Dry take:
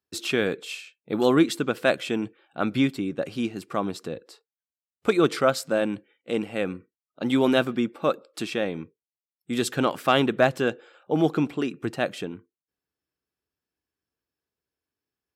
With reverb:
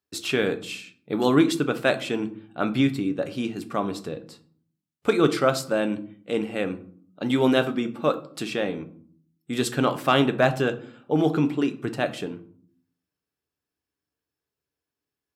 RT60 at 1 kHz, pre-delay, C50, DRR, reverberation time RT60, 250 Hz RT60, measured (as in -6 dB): 0.50 s, 7 ms, 16.0 dB, 8.5 dB, 0.55 s, 0.85 s